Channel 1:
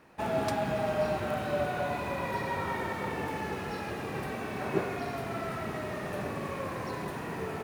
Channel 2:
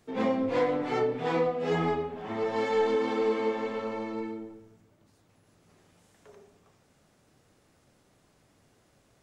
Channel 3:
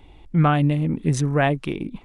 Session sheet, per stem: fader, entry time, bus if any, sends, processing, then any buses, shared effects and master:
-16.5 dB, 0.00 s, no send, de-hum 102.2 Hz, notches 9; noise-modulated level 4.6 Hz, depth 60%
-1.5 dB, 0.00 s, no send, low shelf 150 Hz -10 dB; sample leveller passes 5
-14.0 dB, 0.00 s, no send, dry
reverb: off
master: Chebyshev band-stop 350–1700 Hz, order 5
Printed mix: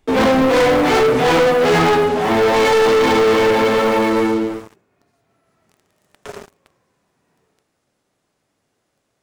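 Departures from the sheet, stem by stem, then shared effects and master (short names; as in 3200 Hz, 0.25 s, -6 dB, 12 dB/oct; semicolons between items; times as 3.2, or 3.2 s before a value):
stem 1 -16.5 dB -> -28.0 dB; stem 2 -1.5 dB -> +6.0 dB; master: missing Chebyshev band-stop 350–1700 Hz, order 5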